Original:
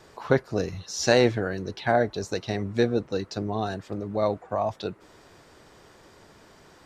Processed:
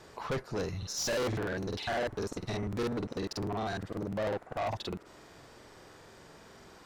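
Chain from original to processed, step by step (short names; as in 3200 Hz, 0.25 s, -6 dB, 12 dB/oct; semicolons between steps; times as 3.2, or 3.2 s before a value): tube stage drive 29 dB, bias 0.3; crackling interface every 0.10 s, samples 2048, repeat, from 0.78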